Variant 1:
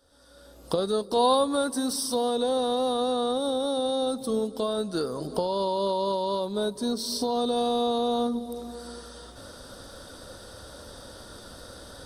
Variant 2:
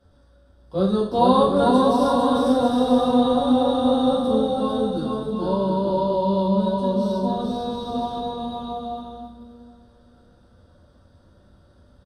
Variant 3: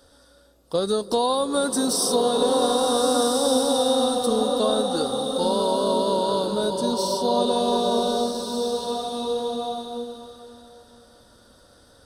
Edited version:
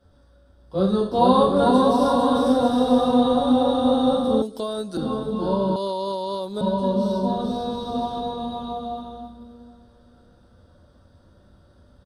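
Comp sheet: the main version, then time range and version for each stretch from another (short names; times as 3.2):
2
4.42–4.97 from 1
5.76–6.61 from 1
not used: 3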